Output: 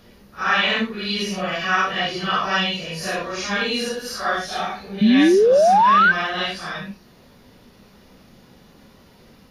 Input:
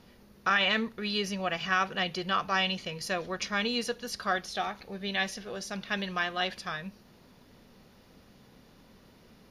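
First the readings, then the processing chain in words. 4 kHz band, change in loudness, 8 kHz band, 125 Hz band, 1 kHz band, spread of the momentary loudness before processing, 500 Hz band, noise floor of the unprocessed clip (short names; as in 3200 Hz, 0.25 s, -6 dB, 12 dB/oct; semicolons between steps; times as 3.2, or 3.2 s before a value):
+7.5 dB, +11.5 dB, +7.5 dB, +8.5 dB, +13.0 dB, 10 LU, +15.0 dB, -58 dBFS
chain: phase scrambler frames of 0.2 s; painted sound rise, 5.01–6.12, 200–1600 Hz -21 dBFS; gain +7.5 dB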